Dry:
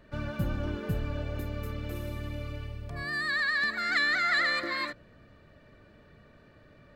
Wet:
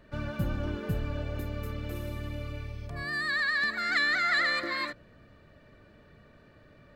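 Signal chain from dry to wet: spectral repair 2.58–2.84, 2000–6300 Hz

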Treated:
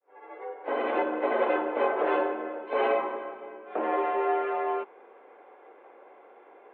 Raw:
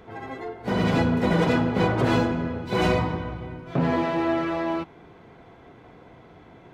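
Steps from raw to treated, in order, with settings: opening faded in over 0.62 s; high shelf 2200 Hz -11.5 dB; mistuned SSB +62 Hz 330–3000 Hz

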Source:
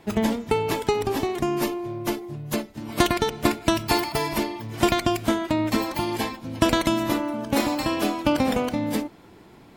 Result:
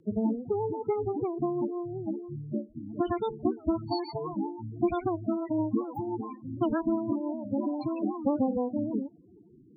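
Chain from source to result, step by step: loudest bins only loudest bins 8; rotary speaker horn 6 Hz; record warp 78 rpm, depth 160 cents; gain -2.5 dB

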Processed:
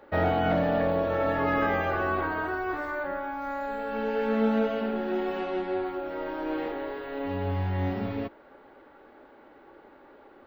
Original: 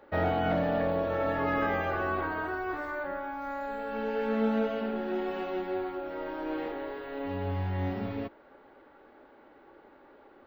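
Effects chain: 5.39–5.85 LPF 8900 Hz; gain +3 dB

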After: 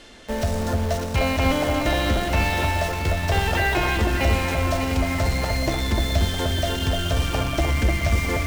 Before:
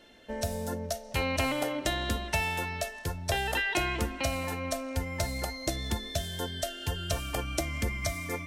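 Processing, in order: delta modulation 64 kbps, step -44 dBFS; LPF 7200 Hz 12 dB/oct; low shelf 66 Hz +9.5 dB; in parallel at -8 dB: companded quantiser 2-bit; on the sum: echo with dull and thin repeats by turns 0.3 s, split 1700 Hz, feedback 67%, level -3 dB; on a send at -15 dB: reverb RT60 0.55 s, pre-delay 57 ms; on the sum: gain +3.5 dB

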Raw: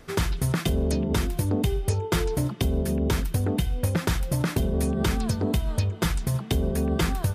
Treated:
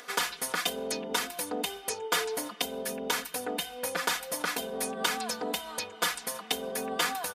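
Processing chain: HPF 650 Hz 12 dB/oct; comb 4.1 ms, depth 89%; upward compressor, threshold -44 dBFS

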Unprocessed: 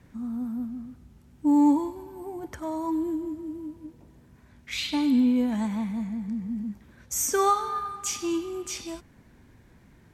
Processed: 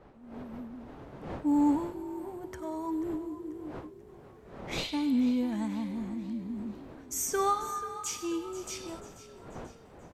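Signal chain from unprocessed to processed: opening faded in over 1.13 s; wind noise 600 Hz -43 dBFS; frequency-shifting echo 0.487 s, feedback 48%, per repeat +40 Hz, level -15 dB; gain -5.5 dB

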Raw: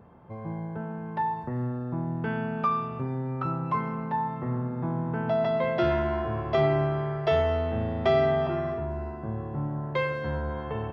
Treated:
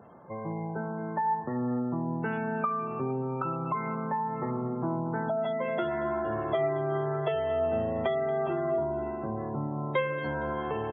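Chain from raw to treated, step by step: Bessel high-pass 190 Hz, order 2; notches 60/120/180/240 Hz; spectral gate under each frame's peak -25 dB strong; compressor 5:1, threshold -31 dBFS, peak gain reduction 11 dB; flange 0.26 Hz, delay 1.4 ms, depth 2.9 ms, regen +72%; on a send: feedback echo 0.232 s, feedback 48%, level -17 dB; on the sum: gain +8.5 dB

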